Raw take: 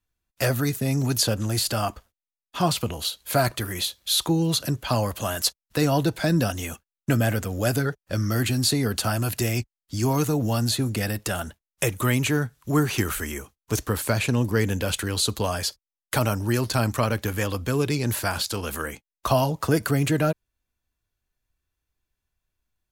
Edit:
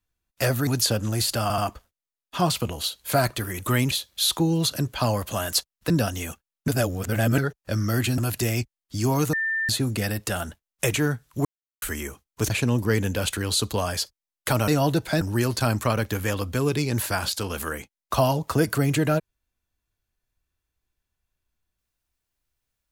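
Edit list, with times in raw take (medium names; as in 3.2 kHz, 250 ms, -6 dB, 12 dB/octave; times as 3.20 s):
0.67–1.04 s: delete
1.79 s: stutter 0.08 s, 3 plays
5.79–6.32 s: move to 16.34 s
7.10–7.80 s: reverse
8.60–9.17 s: delete
10.32–10.68 s: bleep 1.79 kHz -22.5 dBFS
11.93–12.25 s: move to 3.80 s
12.76–13.13 s: mute
13.81–14.16 s: delete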